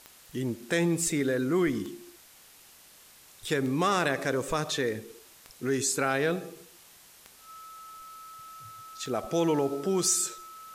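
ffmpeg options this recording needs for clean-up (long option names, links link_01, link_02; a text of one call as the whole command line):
ffmpeg -i in.wav -af "adeclick=threshold=4,bandreject=frequency=1300:width=30,afwtdn=0.0022" out.wav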